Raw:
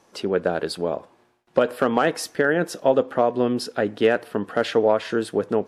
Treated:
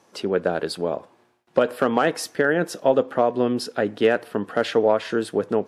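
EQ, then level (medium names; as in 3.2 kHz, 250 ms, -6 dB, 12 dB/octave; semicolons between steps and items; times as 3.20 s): high-pass 75 Hz; 0.0 dB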